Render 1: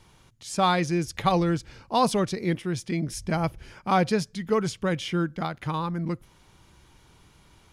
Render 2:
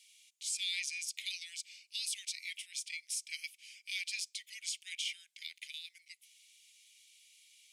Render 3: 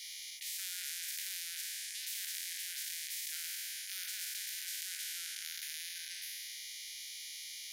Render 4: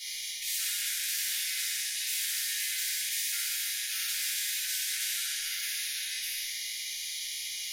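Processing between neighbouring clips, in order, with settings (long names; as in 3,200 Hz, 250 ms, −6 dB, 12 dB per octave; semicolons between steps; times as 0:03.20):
Butterworth high-pass 2,200 Hz 72 dB per octave; parametric band 8,200 Hz +7 dB 0.4 octaves; brickwall limiter −26.5 dBFS, peak gain reduction 8.5 dB
peak hold with a decay on every bin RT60 1.62 s; phaser with its sweep stopped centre 1,800 Hz, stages 8; every bin compressed towards the loudest bin 10 to 1; level +1 dB
flutter between parallel walls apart 10.4 metres, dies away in 0.58 s; rectangular room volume 160 cubic metres, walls furnished, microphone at 3.3 metres; level +2 dB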